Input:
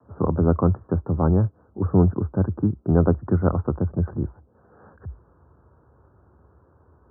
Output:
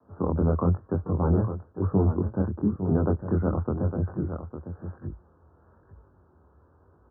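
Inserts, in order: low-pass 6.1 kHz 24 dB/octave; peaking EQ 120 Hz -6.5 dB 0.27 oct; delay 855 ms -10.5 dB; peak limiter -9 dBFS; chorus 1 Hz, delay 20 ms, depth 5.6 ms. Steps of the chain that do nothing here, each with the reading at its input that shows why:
low-pass 6.1 kHz: input has nothing above 810 Hz

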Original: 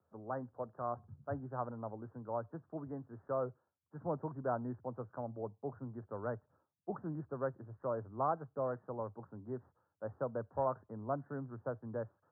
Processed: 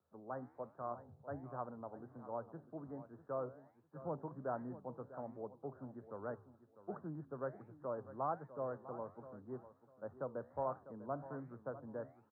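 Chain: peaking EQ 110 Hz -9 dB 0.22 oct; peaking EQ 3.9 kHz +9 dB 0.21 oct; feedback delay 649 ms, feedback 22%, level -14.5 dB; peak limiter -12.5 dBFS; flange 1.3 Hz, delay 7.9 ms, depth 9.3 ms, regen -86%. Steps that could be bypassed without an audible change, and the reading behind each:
peaking EQ 3.9 kHz: input has nothing above 1.7 kHz; peak limiter -12.5 dBFS: peak at its input -21.0 dBFS

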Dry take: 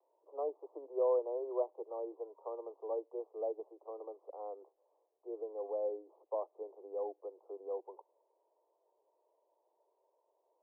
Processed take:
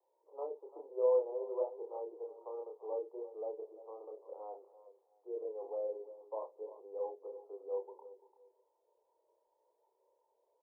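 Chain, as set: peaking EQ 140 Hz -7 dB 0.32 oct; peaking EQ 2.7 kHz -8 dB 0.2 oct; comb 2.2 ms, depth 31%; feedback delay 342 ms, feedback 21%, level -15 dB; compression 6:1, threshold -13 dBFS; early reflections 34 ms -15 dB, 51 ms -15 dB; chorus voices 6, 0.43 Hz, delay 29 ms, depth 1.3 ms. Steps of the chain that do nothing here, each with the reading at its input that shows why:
peaking EQ 140 Hz: input has nothing below 290 Hz; peaking EQ 2.7 kHz: input has nothing above 1.1 kHz; compression, threshold -13 dBFS: peak at its input -21.5 dBFS

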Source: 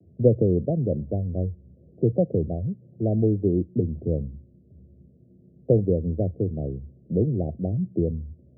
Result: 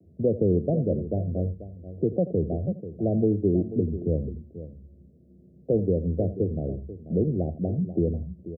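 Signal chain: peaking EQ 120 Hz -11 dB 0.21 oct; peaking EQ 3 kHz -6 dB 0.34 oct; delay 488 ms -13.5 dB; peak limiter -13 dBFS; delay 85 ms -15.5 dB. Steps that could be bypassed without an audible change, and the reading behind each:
peaking EQ 3 kHz: input has nothing above 760 Hz

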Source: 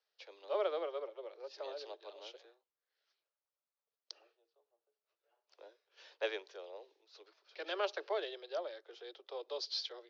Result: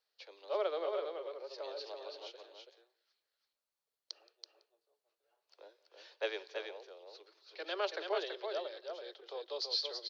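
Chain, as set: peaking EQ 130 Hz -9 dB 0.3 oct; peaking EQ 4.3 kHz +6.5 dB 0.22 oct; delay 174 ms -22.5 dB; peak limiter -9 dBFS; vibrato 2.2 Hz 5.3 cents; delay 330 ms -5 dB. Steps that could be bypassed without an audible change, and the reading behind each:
peaking EQ 130 Hz: input has nothing below 300 Hz; peak limiter -9 dBFS: peak at its input -22.5 dBFS

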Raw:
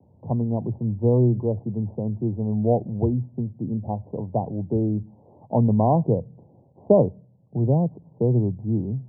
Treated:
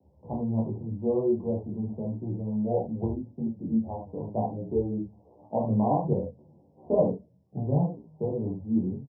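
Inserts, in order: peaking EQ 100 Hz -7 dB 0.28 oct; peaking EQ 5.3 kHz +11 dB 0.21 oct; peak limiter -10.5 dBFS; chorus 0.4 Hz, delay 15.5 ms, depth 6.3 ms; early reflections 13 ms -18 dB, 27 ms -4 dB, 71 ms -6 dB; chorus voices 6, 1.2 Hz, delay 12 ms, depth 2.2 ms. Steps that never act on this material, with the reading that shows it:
peaking EQ 5.3 kHz: input has nothing above 1.1 kHz

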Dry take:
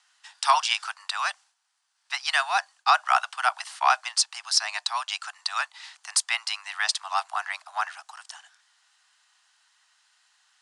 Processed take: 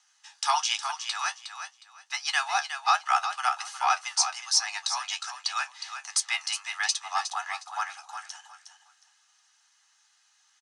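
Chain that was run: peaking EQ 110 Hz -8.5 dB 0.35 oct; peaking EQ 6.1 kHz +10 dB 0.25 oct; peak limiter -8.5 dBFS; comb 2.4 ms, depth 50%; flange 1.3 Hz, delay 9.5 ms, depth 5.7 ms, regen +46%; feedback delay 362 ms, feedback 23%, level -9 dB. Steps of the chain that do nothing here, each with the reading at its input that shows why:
peaking EQ 110 Hz: input has nothing below 570 Hz

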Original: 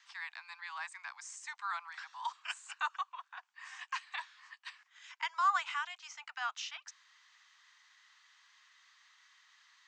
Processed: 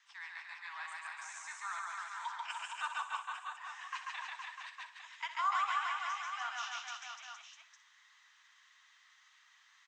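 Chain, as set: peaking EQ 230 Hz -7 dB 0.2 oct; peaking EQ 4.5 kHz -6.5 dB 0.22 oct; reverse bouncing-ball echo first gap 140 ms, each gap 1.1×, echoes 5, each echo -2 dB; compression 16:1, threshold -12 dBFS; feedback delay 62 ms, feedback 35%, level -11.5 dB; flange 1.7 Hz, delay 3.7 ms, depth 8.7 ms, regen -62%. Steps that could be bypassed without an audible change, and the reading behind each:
peaking EQ 230 Hz: input has nothing below 640 Hz; compression, threshold -12 dBFS: peak at its input -18.5 dBFS

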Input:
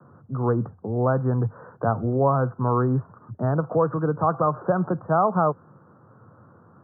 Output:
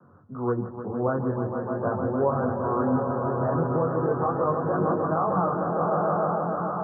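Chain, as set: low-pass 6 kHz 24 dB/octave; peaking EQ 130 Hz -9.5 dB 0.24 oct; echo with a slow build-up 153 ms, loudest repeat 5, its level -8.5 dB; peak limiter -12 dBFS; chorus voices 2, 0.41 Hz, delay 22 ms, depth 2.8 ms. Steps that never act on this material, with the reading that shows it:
low-pass 6 kHz: input has nothing above 1.5 kHz

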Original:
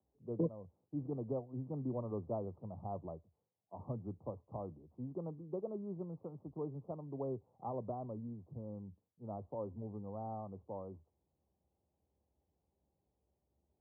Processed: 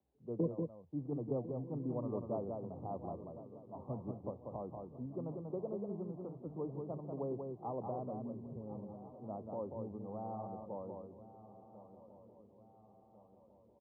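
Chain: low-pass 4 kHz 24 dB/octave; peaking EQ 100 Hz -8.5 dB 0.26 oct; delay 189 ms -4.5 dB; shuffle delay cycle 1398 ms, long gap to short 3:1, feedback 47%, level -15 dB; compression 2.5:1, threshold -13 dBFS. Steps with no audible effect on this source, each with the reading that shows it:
low-pass 4 kHz: input has nothing above 1.3 kHz; compression, threshold -13 dBFS: peak at its input -24.0 dBFS

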